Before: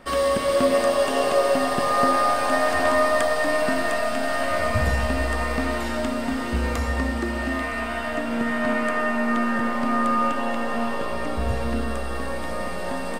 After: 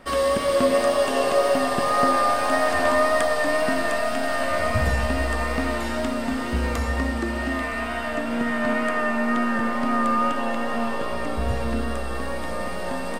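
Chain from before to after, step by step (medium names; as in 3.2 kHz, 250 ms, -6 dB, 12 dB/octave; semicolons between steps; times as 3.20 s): wow and flutter 21 cents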